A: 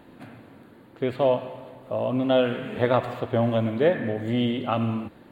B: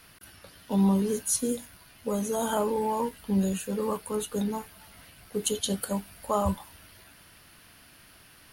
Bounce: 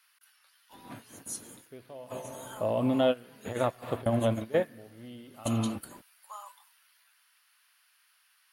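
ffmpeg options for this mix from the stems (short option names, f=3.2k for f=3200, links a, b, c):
-filter_complex "[0:a]alimiter=limit=-13.5dB:level=0:latency=1:release=195,adelay=700,volume=-2dB[a];[1:a]highpass=f=1k:w=0.5412,highpass=f=1k:w=1.3066,volume=-11.5dB,asplit=2[b][c];[c]apad=whole_len=265342[d];[a][d]sidechaingate=range=-20dB:threshold=-54dB:ratio=16:detection=peak[e];[e][b]amix=inputs=2:normalize=0"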